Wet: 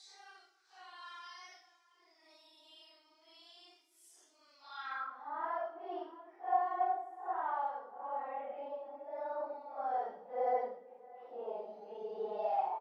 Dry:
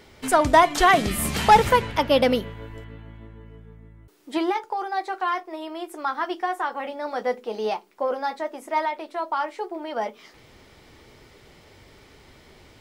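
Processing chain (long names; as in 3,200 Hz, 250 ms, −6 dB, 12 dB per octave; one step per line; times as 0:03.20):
far-end echo of a speakerphone 140 ms, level −19 dB
extreme stretch with random phases 4.7×, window 0.05 s, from 0:05.05
band-pass filter sweep 5,400 Hz → 740 Hz, 0:04.60–0:05.32
level −7 dB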